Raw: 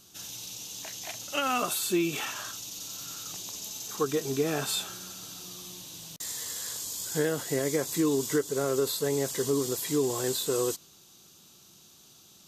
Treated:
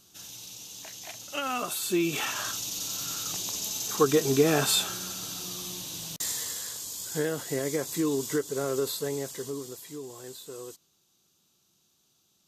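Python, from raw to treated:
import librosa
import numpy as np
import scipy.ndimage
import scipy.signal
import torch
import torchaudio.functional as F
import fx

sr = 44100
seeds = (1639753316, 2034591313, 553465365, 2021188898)

y = fx.gain(x, sr, db=fx.line((1.66, -3.0), (2.5, 6.0), (6.2, 6.0), (6.73, -1.5), (8.93, -1.5), (9.99, -13.5)))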